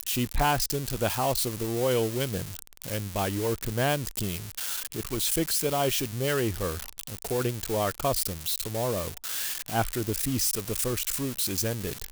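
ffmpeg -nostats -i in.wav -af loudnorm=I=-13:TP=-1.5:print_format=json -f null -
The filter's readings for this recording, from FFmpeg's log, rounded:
"input_i" : "-28.2",
"input_tp" : "-11.6",
"input_lra" : "1.2",
"input_thresh" : "-38.2",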